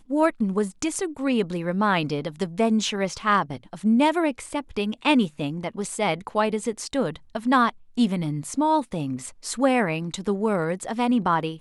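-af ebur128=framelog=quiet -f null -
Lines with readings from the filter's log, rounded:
Integrated loudness:
  I:         -24.4 LUFS
  Threshold: -34.4 LUFS
Loudness range:
  LRA:         1.8 LU
  Threshold: -44.4 LUFS
  LRA low:   -25.2 LUFS
  LRA high:  -23.4 LUFS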